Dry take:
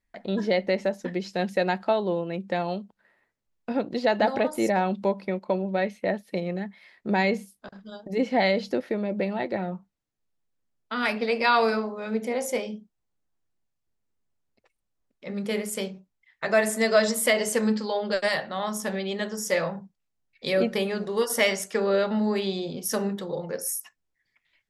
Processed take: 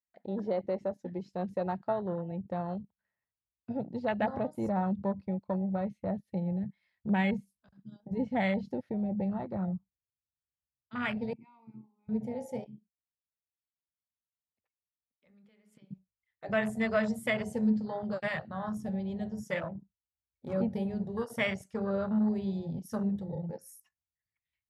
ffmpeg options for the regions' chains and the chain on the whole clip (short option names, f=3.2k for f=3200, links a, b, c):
-filter_complex "[0:a]asettb=1/sr,asplit=3[a][b][c];[a]atrim=end=11.334[d];[b]atrim=start=11.33:end=12.09,asetpts=PTS-STARTPTS,afade=t=in:d=0.004:c=qsin,afade=t=out:st=0.756:d=0.004:c=qsin,asplit=3[e][f][g];[e]bandpass=f=300:t=q:w=8,volume=0dB[h];[f]bandpass=f=870:t=q:w=8,volume=-6dB[i];[g]bandpass=f=2.24k:t=q:w=8,volume=-9dB[j];[h][i][j]amix=inputs=3:normalize=0,highshelf=f=2.2k:g=-11.5[k];[c]atrim=start=12.086[l];[d][k]acrossfade=d=0.004:c1=hsin:c2=qsin[m];[m][l]acrossfade=d=0.004:c1=qsin:c2=hsin,asettb=1/sr,asplit=3[n][o][p];[n]atrim=end=12.644[q];[o]atrim=start=12.64:end=15.91,asetpts=PTS-STARTPTS,afade=t=in:d=0.004:c=qsin,afade=t=out:st=3.266:d=0.004:c=qsin,acrossover=split=220 4100:gain=0.251 1 0.158[r][s][t];[r][s][t]amix=inputs=3:normalize=0,acompressor=threshold=-39dB:ratio=10:attack=3.2:release=140:knee=1:detection=peak[u];[p]atrim=start=15.906[v];[q][u]acrossfade=d=0.004:c1=hsin:c2=qsin[w];[w][v]acrossfade=d=0.004:c1=qsin:c2=hsin,asettb=1/sr,asplit=3[x][y][z];[x]atrim=end=19.594[aa];[y]atrim=start=19.59:end=20.53,asetpts=PTS-STARTPTS,afade=t=in:d=0.004:c=qsin,afade=t=out:st=0.936:d=0.004:c=qsin,aecho=1:1:3.1:0.56,atrim=end_sample=41454,adynamicsmooth=sensitivity=1.5:basefreq=710[ab];[z]atrim=start=20.526[ac];[aa][ab]acrossfade=d=0.004:c1=hsin:c2=qsin[ad];[ad][ac]acrossfade=d=0.004:c1=qsin:c2=hsin,highpass=f=54:w=0.5412,highpass=f=54:w=1.3066,afwtdn=0.0398,asubboost=boost=11:cutoff=110,volume=-6.5dB"